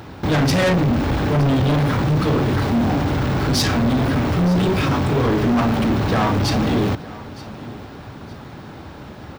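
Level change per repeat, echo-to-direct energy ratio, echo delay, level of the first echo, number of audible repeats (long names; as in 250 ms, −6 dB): −10.0 dB, −18.5 dB, 916 ms, −19.0 dB, 2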